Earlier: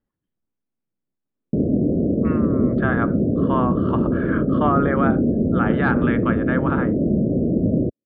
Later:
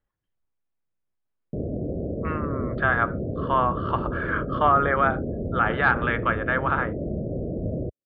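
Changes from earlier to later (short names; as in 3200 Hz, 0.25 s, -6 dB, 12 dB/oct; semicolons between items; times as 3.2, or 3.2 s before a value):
speech +4.0 dB; master: add bell 240 Hz -14.5 dB 1.7 oct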